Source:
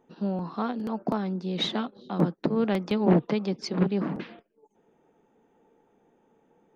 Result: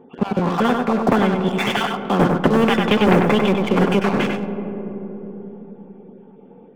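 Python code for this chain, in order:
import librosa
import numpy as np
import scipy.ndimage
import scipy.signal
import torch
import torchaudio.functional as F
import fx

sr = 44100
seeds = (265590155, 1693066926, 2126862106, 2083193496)

p1 = fx.spec_dropout(x, sr, seeds[0], share_pct=28)
p2 = fx.brickwall_lowpass(p1, sr, high_hz=3600.0)
p3 = fx.notch(p2, sr, hz=1800.0, q=17.0)
p4 = fx.notch_comb(p3, sr, f0_hz=320.0)
p5 = fx.leveller(p4, sr, passes=2)
p6 = fx.peak_eq(p5, sr, hz=280.0, db=11.5, octaves=2.6)
p7 = p6 + fx.echo_single(p6, sr, ms=97, db=-7.0, dry=0)
p8 = fx.rev_freeverb(p7, sr, rt60_s=3.3, hf_ratio=0.4, predelay_ms=5, drr_db=14.5)
p9 = fx.spectral_comp(p8, sr, ratio=2.0)
y = F.gain(torch.from_numpy(p9), -3.5).numpy()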